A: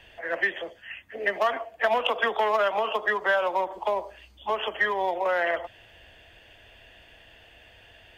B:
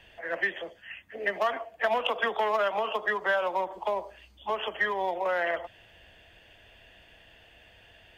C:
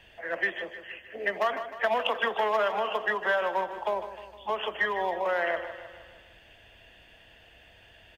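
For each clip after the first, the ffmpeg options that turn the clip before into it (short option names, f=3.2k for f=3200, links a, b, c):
-af "equalizer=f=180:w=3.4:g=4.5,volume=-3dB"
-af "aecho=1:1:154|308|462|616|770|924:0.266|0.144|0.0776|0.0419|0.0226|0.0122"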